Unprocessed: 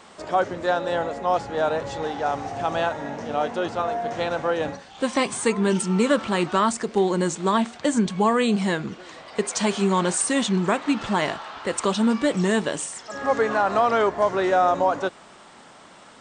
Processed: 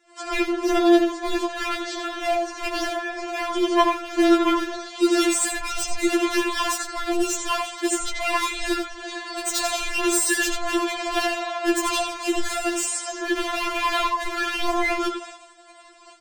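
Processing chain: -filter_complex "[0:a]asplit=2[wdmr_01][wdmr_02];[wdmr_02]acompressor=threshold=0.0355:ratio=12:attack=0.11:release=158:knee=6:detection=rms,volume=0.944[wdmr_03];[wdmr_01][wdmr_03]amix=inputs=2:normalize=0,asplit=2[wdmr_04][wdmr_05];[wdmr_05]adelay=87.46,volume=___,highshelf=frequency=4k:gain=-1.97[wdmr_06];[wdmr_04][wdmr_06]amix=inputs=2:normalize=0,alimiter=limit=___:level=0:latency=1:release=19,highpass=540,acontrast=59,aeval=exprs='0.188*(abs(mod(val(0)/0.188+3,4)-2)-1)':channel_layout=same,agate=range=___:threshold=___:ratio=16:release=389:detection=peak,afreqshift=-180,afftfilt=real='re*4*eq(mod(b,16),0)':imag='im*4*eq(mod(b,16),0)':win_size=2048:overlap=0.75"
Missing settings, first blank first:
0.501, 0.282, 0.0631, 0.0224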